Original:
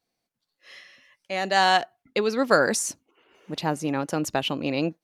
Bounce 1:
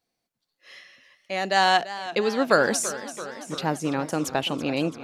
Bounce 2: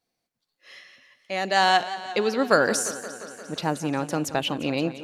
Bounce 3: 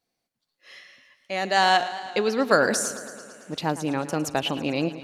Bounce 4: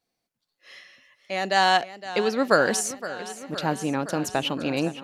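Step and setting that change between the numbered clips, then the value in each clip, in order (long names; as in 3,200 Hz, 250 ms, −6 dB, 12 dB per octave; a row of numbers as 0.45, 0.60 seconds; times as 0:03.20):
feedback echo with a swinging delay time, delay time: 337, 175, 111, 516 milliseconds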